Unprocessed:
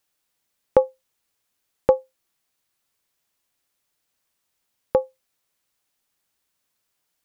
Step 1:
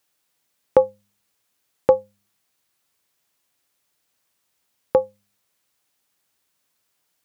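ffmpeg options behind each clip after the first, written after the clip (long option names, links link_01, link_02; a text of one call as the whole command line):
ffmpeg -i in.wav -filter_complex "[0:a]highpass=67,bandreject=frequency=101.4:width_type=h:width=4,bandreject=frequency=202.8:width_type=h:width=4,asplit=2[link_01][link_02];[link_02]alimiter=limit=-12.5dB:level=0:latency=1:release=25,volume=-3dB[link_03];[link_01][link_03]amix=inputs=2:normalize=0,volume=-1dB" out.wav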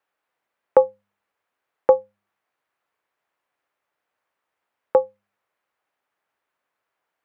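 ffmpeg -i in.wav -filter_complex "[0:a]acrossover=split=400 2200:gain=0.224 1 0.0794[link_01][link_02][link_03];[link_01][link_02][link_03]amix=inputs=3:normalize=0,volume=2.5dB" out.wav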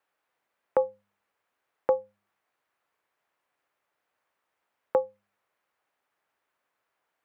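ffmpeg -i in.wav -af "alimiter=limit=-12.5dB:level=0:latency=1:release=205" out.wav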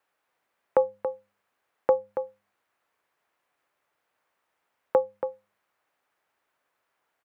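ffmpeg -i in.wav -filter_complex "[0:a]asplit=2[link_01][link_02];[link_02]adelay=279.9,volume=-9dB,highshelf=frequency=4000:gain=-6.3[link_03];[link_01][link_03]amix=inputs=2:normalize=0,volume=2.5dB" out.wav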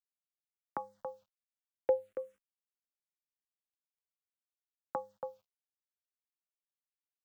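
ffmpeg -i in.wav -filter_complex "[0:a]acrusher=bits=10:mix=0:aa=0.000001,asplit=2[link_01][link_02];[link_02]afreqshift=-0.49[link_03];[link_01][link_03]amix=inputs=2:normalize=1,volume=-6.5dB" out.wav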